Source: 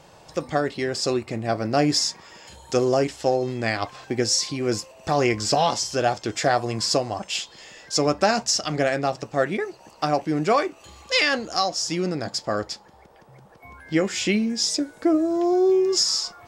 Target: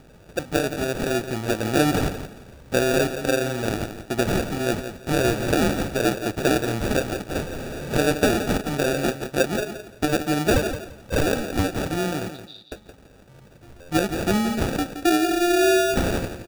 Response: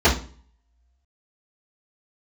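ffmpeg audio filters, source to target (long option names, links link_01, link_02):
-filter_complex "[0:a]asettb=1/sr,asplit=3[link_01][link_02][link_03];[link_01]atrim=end=7.354[link_04];[link_02]atrim=start=7.35:end=8.02,asetpts=PTS-STARTPTS,afade=type=in:duration=0.004:curve=qsin,afade=type=out:start_time=0.666:duration=0.004:curve=qsin,aeval=exprs='val(0)+0.5*0.0376*sgn(val(0))':channel_layout=same[link_05];[link_03]atrim=start=8.016[link_06];[link_04][link_05]acrossfade=duration=0.004:curve1=hsin:curve2=qsin[link_07];[link_07][link_06]acrossfade=duration=0.004:curve1=qsin:curve2=hsin,aeval=exprs='val(0)+0.00178*(sin(2*PI*50*n/s)+sin(2*PI*2*50*n/s)/2+sin(2*PI*3*50*n/s)/3+sin(2*PI*4*50*n/s)/4+sin(2*PI*5*50*n/s)/5)':channel_layout=same,acrusher=samples=42:mix=1:aa=0.000001,asettb=1/sr,asplit=3[link_08][link_09][link_10];[link_08]atrim=end=12.314[link_11];[link_09]atrim=start=12.31:end=12.72,asetpts=PTS-STARTPTS,afade=type=in:duration=0.004:curve=qsin,afade=type=out:start_time=0.406:duration=0.004:curve=qsin,asuperpass=centerf=3900:order=4:qfactor=5[link_12];[link_10]atrim=start=12.716[link_13];[link_11][link_12]acrossfade=duration=0.004:curve1=hsin:curve2=qsin[link_14];[link_14][link_13]acrossfade=duration=0.004:curve1=qsin:curve2=hsin,asplit=2[link_15][link_16];[link_16]aecho=0:1:171|342|513:0.316|0.0696|0.0153[link_17];[link_15][link_17]amix=inputs=2:normalize=0"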